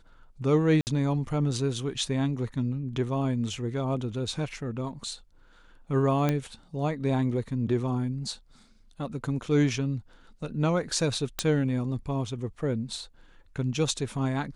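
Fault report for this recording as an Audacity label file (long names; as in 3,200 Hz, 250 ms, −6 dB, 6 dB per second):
0.810000	0.870000	drop-out 59 ms
6.290000	6.290000	click −13 dBFS
11.390000	11.390000	click −9 dBFS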